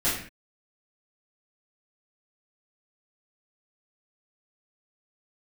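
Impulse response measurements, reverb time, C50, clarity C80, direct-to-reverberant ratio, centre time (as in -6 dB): no single decay rate, 3.0 dB, 7.0 dB, -12.0 dB, 46 ms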